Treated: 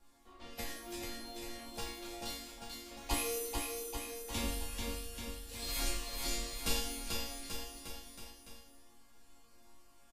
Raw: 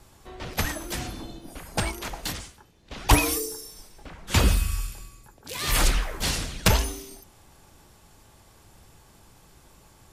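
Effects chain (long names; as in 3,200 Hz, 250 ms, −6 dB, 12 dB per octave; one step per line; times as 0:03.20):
dynamic equaliser 1,400 Hz, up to −7 dB, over −43 dBFS, Q 1.1
resonators tuned to a chord A#3 minor, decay 0.59 s
on a send: bouncing-ball delay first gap 440 ms, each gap 0.9×, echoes 5
on the sum: level +8.5 dB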